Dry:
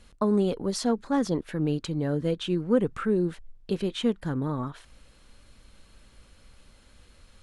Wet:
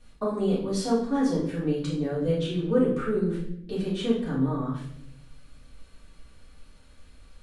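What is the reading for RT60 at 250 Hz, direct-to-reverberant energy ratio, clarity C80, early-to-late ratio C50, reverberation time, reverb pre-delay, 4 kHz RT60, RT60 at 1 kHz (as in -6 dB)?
1.1 s, -9.0 dB, 8.0 dB, 4.0 dB, 0.70 s, 3 ms, 0.55 s, 0.60 s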